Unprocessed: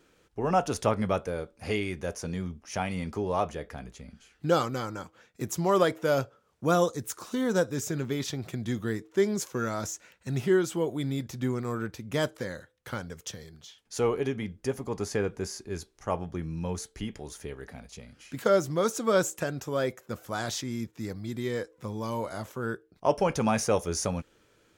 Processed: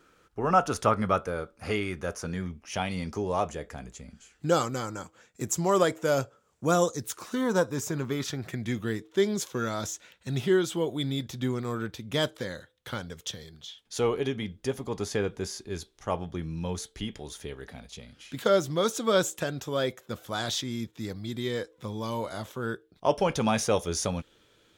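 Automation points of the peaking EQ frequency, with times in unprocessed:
peaking EQ +9.5 dB 0.45 oct
2.25 s 1.3 kHz
3.28 s 7.4 kHz
6.90 s 7.4 kHz
7.45 s 1 kHz
7.99 s 1 kHz
9.07 s 3.5 kHz

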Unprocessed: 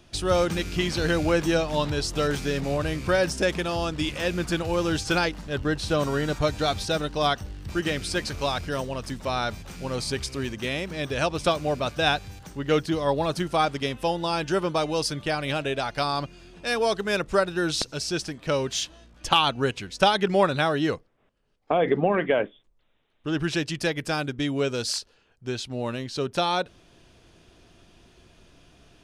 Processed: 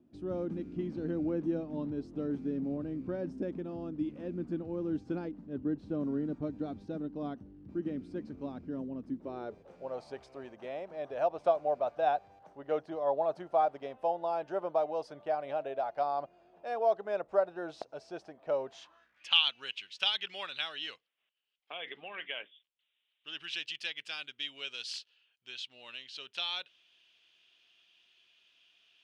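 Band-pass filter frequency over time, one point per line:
band-pass filter, Q 3.7
9.07 s 260 Hz
9.95 s 680 Hz
18.70 s 680 Hz
19.34 s 3 kHz

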